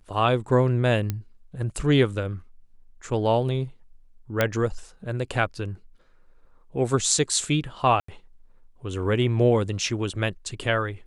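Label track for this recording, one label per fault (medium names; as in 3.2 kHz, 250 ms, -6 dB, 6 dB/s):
1.100000	1.100000	pop -13 dBFS
4.410000	4.410000	pop -7 dBFS
8.000000	8.080000	dropout 84 ms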